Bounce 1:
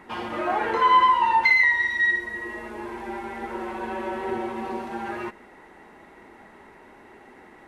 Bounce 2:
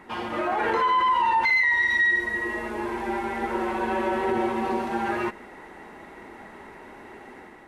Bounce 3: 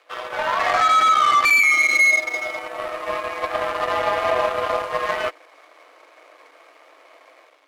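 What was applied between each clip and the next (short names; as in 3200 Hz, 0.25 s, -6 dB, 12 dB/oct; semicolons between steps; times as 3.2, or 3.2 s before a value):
limiter -20.5 dBFS, peak gain reduction 12 dB; AGC gain up to 5 dB
crossover distortion -49 dBFS; frequency shift +270 Hz; added harmonics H 7 -22 dB, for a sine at -13 dBFS; gain +5.5 dB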